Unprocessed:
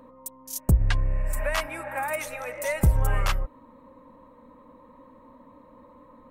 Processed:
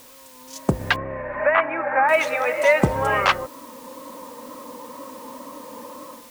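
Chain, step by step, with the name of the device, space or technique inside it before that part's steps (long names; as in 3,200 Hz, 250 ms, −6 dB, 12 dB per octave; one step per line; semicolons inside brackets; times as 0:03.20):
dictaphone (band-pass filter 270–3,600 Hz; automatic gain control gain up to 16 dB; tape wow and flutter; white noise bed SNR 24 dB)
0:00.96–0:02.09: inverse Chebyshev low-pass filter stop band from 6,800 Hz, stop band 60 dB
level −1.5 dB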